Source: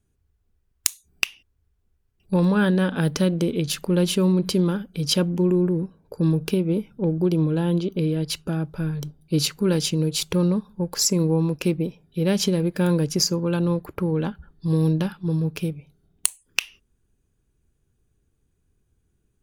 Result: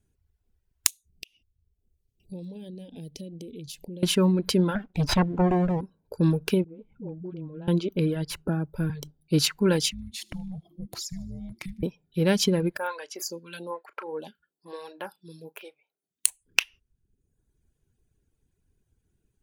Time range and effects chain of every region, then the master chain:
0:00.87–0:04.03: downward compressor 5 to 1, threshold −36 dBFS + Butterworth band-reject 1,300 Hz, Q 0.61
0:04.75–0:05.81: lower of the sound and its delayed copy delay 0.8 ms + low-pass filter 2,400 Hz 6 dB per octave + leveller curve on the samples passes 1
0:06.64–0:07.68: downward compressor 2 to 1, threshold −42 dBFS + high-frequency loss of the air 400 metres + all-pass dispersion highs, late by 54 ms, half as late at 470 Hz
0:08.30–0:08.90: parametric band 3,700 Hz −10.5 dB 2.4 octaves + multiband upward and downward compressor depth 40%
0:09.91–0:11.83: downward compressor 4 to 1, threshold −34 dBFS + frequency shifter −370 Hz + delay with a high-pass on its return 76 ms, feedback 46%, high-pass 3,000 Hz, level −12 dB
0:12.77–0:16.27: high-pass filter 610 Hz + double-tracking delay 36 ms −13 dB + phaser with staggered stages 1.1 Hz
whole clip: dynamic equaliser 1,400 Hz, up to +6 dB, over −42 dBFS, Q 0.83; reverb reduction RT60 0.79 s; notch filter 1,200 Hz, Q 7.9; level −1 dB

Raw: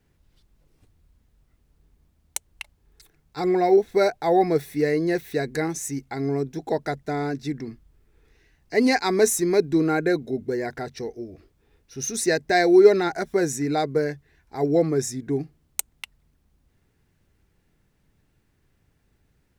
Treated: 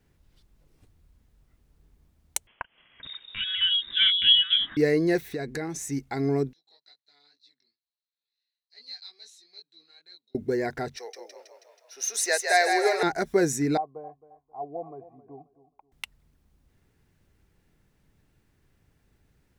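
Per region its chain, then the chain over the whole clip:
0:02.47–0:04.77: upward compression, threshold −27 dBFS + multiband delay without the direct sound highs, lows 560 ms, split 470 Hz + voice inversion scrambler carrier 3,700 Hz
0:05.28–0:05.92: downward compressor 5 to 1, threshold −28 dBFS + high-shelf EQ 7,400 Hz −6 dB
0:06.53–0:10.35: gain on one half-wave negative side −3 dB + chorus effect 2.2 Hz, delay 17 ms, depth 4.1 ms + resonant band-pass 4,100 Hz, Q 14
0:10.97–0:13.03: high-pass filter 580 Hz 24 dB per octave + echo with shifted repeats 161 ms, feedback 60%, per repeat +33 Hz, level −5 dB
0:13.77–0:15.92: formant resonators in series a + tilt shelving filter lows +4.5 dB, about 850 Hz + repeating echo 267 ms, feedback 30%, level −15.5 dB
whole clip: no processing

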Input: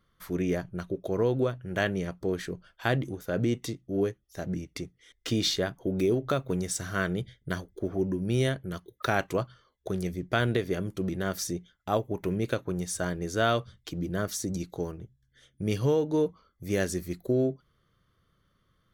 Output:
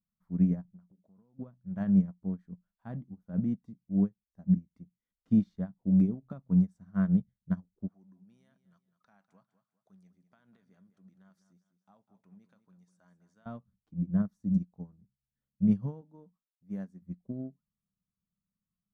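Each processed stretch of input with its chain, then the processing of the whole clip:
0:00.72–0:01.39: low-shelf EQ 120 Hz −10 dB + downward compressor 12 to 1, threshold −35 dBFS
0:07.88–0:13.46: meter weighting curve ITU-R 468 + downward compressor 5 to 1, threshold −28 dBFS + repeating echo 201 ms, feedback 35%, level −12.5 dB
0:16.01–0:17.02: downward expander −53 dBFS + parametric band 72 Hz −14.5 dB 2.2 octaves
whole clip: drawn EQ curve 130 Hz 0 dB, 200 Hz +14 dB, 360 Hz −13 dB, 910 Hz −3 dB, 2,900 Hz −24 dB; expander for the loud parts 2.5 to 1, over −34 dBFS

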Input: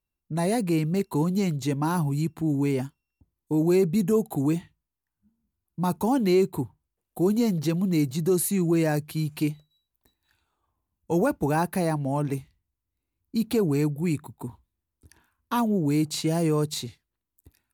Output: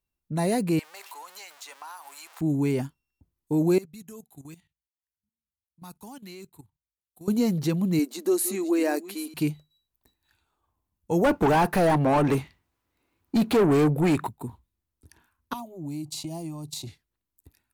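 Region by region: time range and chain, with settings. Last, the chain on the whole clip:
0:00.79–0:02.41: converter with a step at zero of −37.5 dBFS + high-pass filter 790 Hz 24 dB per octave + downward compressor 5 to 1, threshold −39 dBFS
0:03.78–0:07.28: guitar amp tone stack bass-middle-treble 5-5-5 + output level in coarse steps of 14 dB
0:07.99–0:09.34: delay that plays each chunk backwards 422 ms, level −13.5 dB + linear-phase brick-wall high-pass 210 Hz
0:11.24–0:14.29: high-shelf EQ 12,000 Hz +4.5 dB + mid-hump overdrive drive 27 dB, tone 1,400 Hz, clips at −12.5 dBFS
0:15.53–0:16.87: noise gate −37 dBFS, range −13 dB + downward compressor 12 to 1, threshold −29 dBFS + phaser with its sweep stopped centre 310 Hz, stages 8
whole clip: no processing

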